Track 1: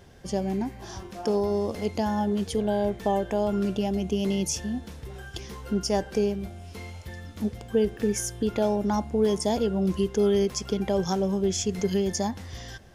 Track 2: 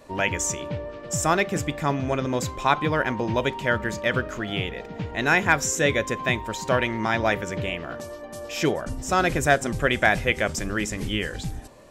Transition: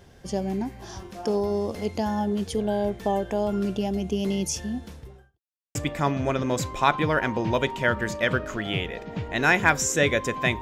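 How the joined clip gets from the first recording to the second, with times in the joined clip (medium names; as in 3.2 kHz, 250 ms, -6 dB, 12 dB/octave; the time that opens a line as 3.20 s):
track 1
4.84–5.40 s: studio fade out
5.40–5.75 s: mute
5.75 s: go over to track 2 from 1.58 s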